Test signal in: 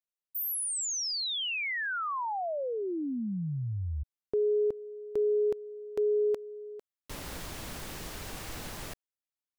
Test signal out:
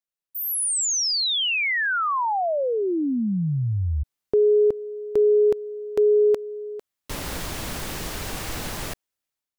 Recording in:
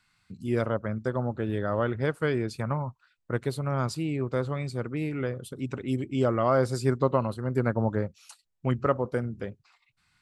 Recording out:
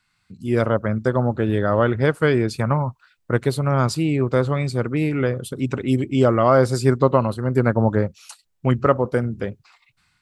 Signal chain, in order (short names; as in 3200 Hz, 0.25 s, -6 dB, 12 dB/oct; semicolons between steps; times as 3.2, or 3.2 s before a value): AGC gain up to 9.5 dB